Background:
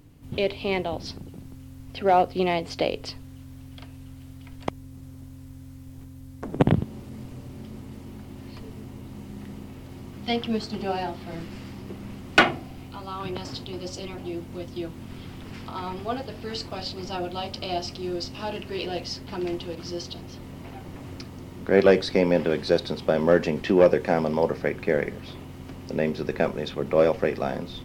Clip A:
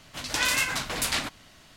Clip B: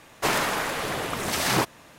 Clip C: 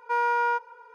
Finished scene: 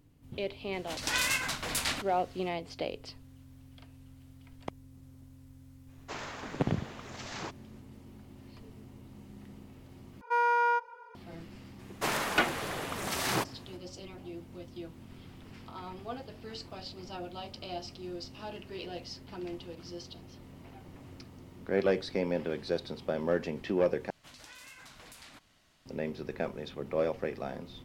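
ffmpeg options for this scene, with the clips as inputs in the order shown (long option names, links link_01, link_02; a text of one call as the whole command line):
ffmpeg -i bed.wav -i cue0.wav -i cue1.wav -i cue2.wav -filter_complex "[1:a]asplit=2[link_01][link_02];[2:a]asplit=2[link_03][link_04];[0:a]volume=-10.5dB[link_05];[link_03]aresample=16000,aresample=44100[link_06];[link_02]acompressor=threshold=-35dB:ratio=6:attack=3.2:release=140:knee=1:detection=peak[link_07];[link_05]asplit=3[link_08][link_09][link_10];[link_08]atrim=end=10.214[link_11];[3:a]atrim=end=0.94,asetpts=PTS-STARTPTS,volume=-2dB[link_12];[link_09]atrim=start=11.146:end=24.104[link_13];[link_07]atrim=end=1.76,asetpts=PTS-STARTPTS,volume=-13.5dB[link_14];[link_10]atrim=start=25.856[link_15];[link_01]atrim=end=1.76,asetpts=PTS-STARTPTS,volume=-4.5dB,afade=type=in:duration=0.004:curve=hsin,afade=type=out:start_time=1.756:duration=0.004:curve=hsin,adelay=730[link_16];[link_06]atrim=end=1.98,asetpts=PTS-STARTPTS,volume=-17dB,afade=type=in:duration=0.05,afade=type=out:start_time=1.93:duration=0.05,adelay=5860[link_17];[link_04]atrim=end=1.98,asetpts=PTS-STARTPTS,volume=-7.5dB,afade=type=in:duration=0.004:curve=hsin,afade=type=out:start_time=1.976:duration=0.004:curve=hsin,adelay=11790[link_18];[link_11][link_12]acrossfade=duration=0.004:curve1=hsin:curve2=hsin[link_19];[link_19][link_13]acrossfade=duration=0.004:curve1=hsin:curve2=hsin[link_20];[link_20][link_14]acrossfade=duration=0.004:curve1=hsin:curve2=hsin[link_21];[link_21][link_15]acrossfade=duration=0.004:curve1=hsin:curve2=hsin[link_22];[link_22][link_16][link_17][link_18]amix=inputs=4:normalize=0" out.wav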